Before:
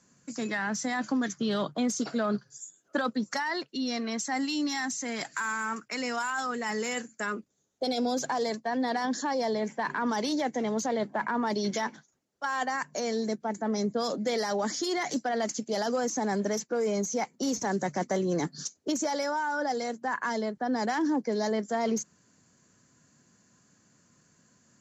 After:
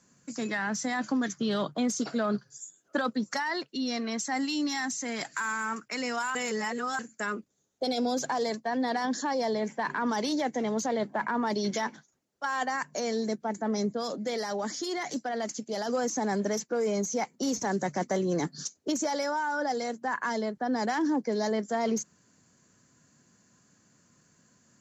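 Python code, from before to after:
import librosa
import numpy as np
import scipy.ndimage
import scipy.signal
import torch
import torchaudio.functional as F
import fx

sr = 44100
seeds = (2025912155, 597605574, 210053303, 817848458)

y = fx.edit(x, sr, fx.reverse_span(start_s=6.35, length_s=0.64),
    fx.clip_gain(start_s=13.95, length_s=1.94, db=-3.0), tone=tone)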